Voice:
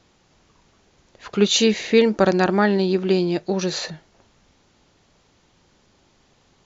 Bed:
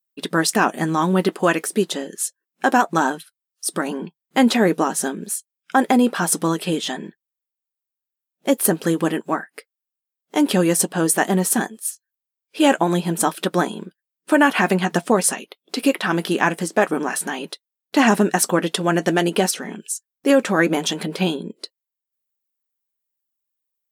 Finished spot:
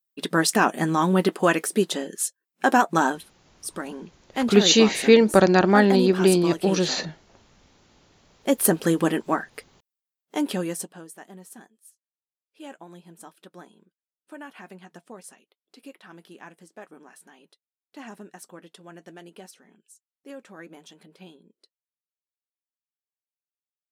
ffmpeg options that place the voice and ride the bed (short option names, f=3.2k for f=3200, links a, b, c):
-filter_complex "[0:a]adelay=3150,volume=1dB[a];[1:a]volume=6dB,afade=t=out:st=3.06:d=0.5:silence=0.421697,afade=t=in:st=8.14:d=0.54:silence=0.398107,afade=t=out:st=9.66:d=1.39:silence=0.0595662[b];[a][b]amix=inputs=2:normalize=0"